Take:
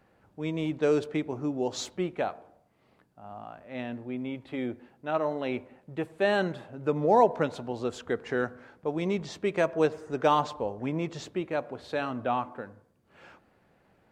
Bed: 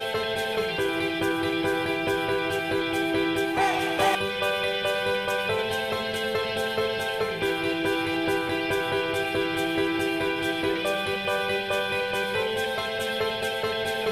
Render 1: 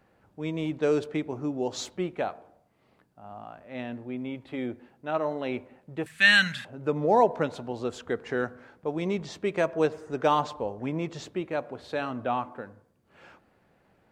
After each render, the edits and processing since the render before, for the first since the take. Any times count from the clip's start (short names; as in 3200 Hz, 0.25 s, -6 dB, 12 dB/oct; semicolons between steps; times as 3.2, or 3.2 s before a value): 6.06–6.65 EQ curve 240 Hz 0 dB, 340 Hz -24 dB, 920 Hz -8 dB, 1700 Hz +15 dB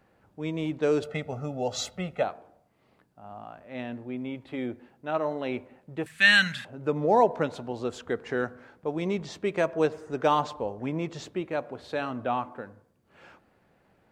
1.02–2.23 comb 1.5 ms, depth 99%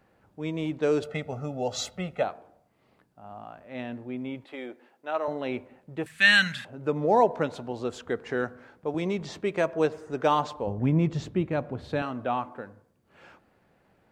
4.45–5.28 HPF 430 Hz; 8.94–9.41 three-band squash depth 70%; 10.67–12.02 tone controls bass +14 dB, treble -3 dB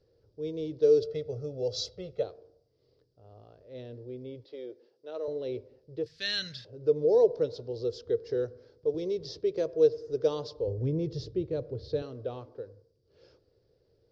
EQ curve 120 Hz 0 dB, 210 Hz -18 dB, 460 Hz +5 dB, 770 Hz -20 dB, 2500 Hz -19 dB, 5100 Hz +7 dB, 8300 Hz -27 dB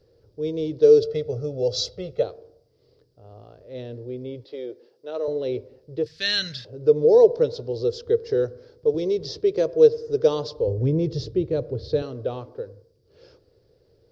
gain +8 dB